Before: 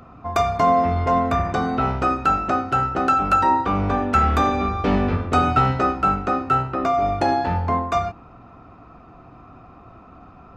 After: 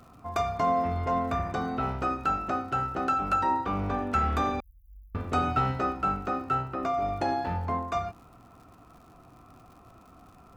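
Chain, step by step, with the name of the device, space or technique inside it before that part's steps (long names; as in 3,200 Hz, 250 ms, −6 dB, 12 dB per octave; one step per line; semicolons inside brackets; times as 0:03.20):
vinyl LP (surface crackle 100 per second −39 dBFS; pink noise bed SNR 43 dB)
0:04.60–0:05.15: inverse Chebyshev band-stop filter 200–3,100 Hz, stop band 80 dB
level −8.5 dB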